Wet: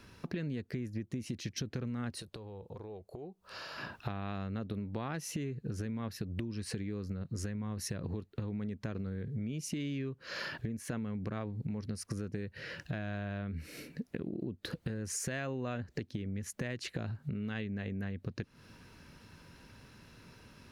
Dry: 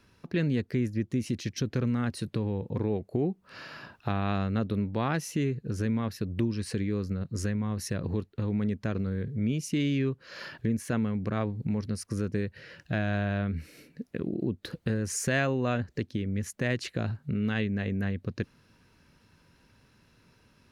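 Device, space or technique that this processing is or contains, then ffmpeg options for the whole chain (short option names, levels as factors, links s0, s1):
serial compression, peaks first: -filter_complex "[0:a]acompressor=threshold=0.0158:ratio=6,acompressor=threshold=0.00398:ratio=1.5,asettb=1/sr,asplit=3[s0][s1][s2];[s0]atrim=end=2.214[s3];[s1]atrim=start=2.21:end=3.78,asetpts=PTS-STARTPTS,afade=t=in:d=0.004:c=qsin,afade=t=out:st=1.566:d=0.004:c=qsin,equalizer=f=125:t=o:w=1:g=-9,equalizer=f=250:t=o:w=1:g=-12,equalizer=f=2000:t=o:w=1:g=-8[s4];[s2]atrim=start=3.776[s5];[s3][s4]acrossfade=d=0.004:c1=hsin:c2=qsin[s6];[s6][s5]acrossfade=d=0.004:c1=qsin:c2=hsin,volume=2"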